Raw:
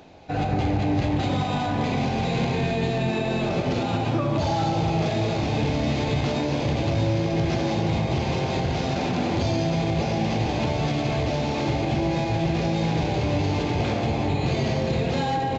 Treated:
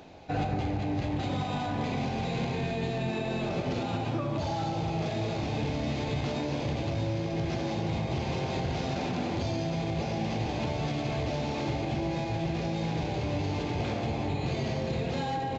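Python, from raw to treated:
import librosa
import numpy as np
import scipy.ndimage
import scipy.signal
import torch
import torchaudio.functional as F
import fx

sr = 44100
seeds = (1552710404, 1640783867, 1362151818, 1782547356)

y = fx.rider(x, sr, range_db=10, speed_s=0.5)
y = y * 10.0 ** (-7.0 / 20.0)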